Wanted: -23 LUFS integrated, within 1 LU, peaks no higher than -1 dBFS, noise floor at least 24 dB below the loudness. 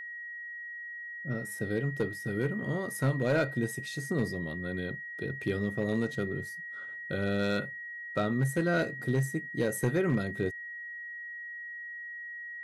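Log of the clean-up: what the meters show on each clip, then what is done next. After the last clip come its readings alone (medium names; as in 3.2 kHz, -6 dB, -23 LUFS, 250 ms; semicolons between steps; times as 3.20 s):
clipped samples 0.4%; clipping level -20.5 dBFS; steady tone 1.9 kHz; tone level -39 dBFS; loudness -33.0 LUFS; peak level -20.5 dBFS; loudness target -23.0 LUFS
-> clip repair -20.5 dBFS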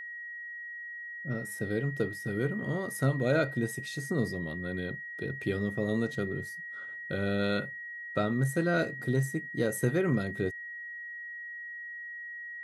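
clipped samples 0.0%; steady tone 1.9 kHz; tone level -39 dBFS
-> band-stop 1.9 kHz, Q 30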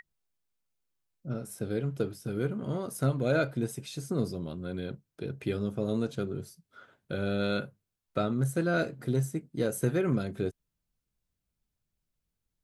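steady tone not found; loudness -32.0 LUFS; peak level -14.5 dBFS; loudness target -23.0 LUFS
-> trim +9 dB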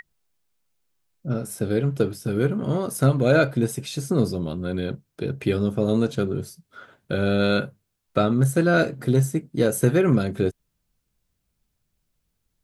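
loudness -23.0 LUFS; peak level -5.5 dBFS; noise floor -76 dBFS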